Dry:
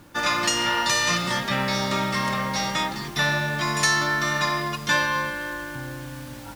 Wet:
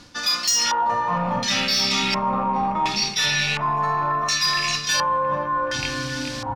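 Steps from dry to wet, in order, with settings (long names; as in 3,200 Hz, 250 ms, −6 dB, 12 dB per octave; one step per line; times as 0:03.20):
loose part that buzzes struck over −31 dBFS, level −17 dBFS
dynamic equaliser 10,000 Hz, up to +7 dB, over −43 dBFS, Q 0.86
on a send: repeating echo 424 ms, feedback 40%, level −9 dB
on the sum: rectangular room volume 2,300 cubic metres, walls furnished, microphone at 1.9 metres
auto-filter low-pass square 0.7 Hz 960–5,000 Hz
parametric band 15,000 Hz +12 dB 2.1 octaves
soft clipping −7.5 dBFS, distortion −16 dB
noise reduction from a noise print of the clip's start 7 dB
reversed playback
downward compressor 4 to 1, threshold −30 dBFS, peak gain reduction 16 dB
reversed playback
level +8.5 dB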